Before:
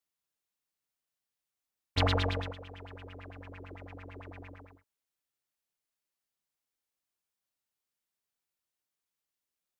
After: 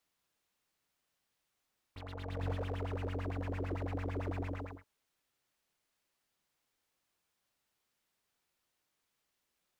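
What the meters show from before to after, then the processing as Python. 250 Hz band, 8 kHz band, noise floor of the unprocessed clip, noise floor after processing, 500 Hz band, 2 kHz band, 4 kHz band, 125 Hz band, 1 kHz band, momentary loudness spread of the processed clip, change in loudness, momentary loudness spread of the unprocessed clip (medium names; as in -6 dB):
0.0 dB, no reading, under -85 dBFS, -84 dBFS, -2.0 dB, -7.5 dB, -16.5 dB, -1.5 dB, -6.0 dB, 10 LU, -8.0 dB, 19 LU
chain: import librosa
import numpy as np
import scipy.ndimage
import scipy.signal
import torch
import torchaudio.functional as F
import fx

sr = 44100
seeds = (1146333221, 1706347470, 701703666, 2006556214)

y = fx.over_compress(x, sr, threshold_db=-41.0, ratio=-1.0)
y = fx.high_shelf(y, sr, hz=5700.0, db=-8.0)
y = fx.slew_limit(y, sr, full_power_hz=4.6)
y = y * 10.0 ** (4.5 / 20.0)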